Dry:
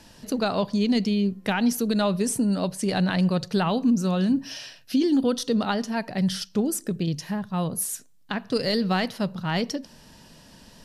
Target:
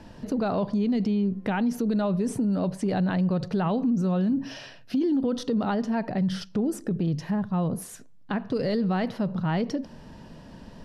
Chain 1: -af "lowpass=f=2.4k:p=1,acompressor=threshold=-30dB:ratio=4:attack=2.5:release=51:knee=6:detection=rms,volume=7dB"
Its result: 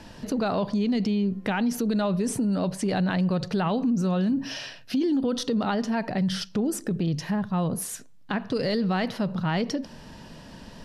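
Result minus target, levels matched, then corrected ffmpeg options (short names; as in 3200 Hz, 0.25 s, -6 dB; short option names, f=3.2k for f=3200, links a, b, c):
2000 Hz band +3.5 dB
-af "lowpass=f=900:p=1,acompressor=threshold=-30dB:ratio=4:attack=2.5:release=51:knee=6:detection=rms,volume=7dB"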